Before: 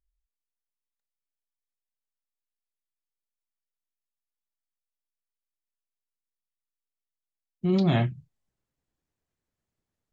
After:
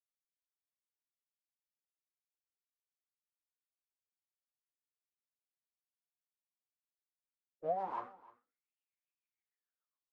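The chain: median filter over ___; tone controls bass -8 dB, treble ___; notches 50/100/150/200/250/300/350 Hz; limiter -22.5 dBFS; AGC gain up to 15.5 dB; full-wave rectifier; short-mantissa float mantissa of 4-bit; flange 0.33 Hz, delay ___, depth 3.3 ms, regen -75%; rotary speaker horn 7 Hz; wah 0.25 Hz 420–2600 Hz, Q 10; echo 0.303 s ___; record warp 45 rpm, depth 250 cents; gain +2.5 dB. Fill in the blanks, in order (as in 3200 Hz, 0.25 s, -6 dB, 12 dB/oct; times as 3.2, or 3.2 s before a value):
41 samples, -3 dB, 9.4 ms, -20.5 dB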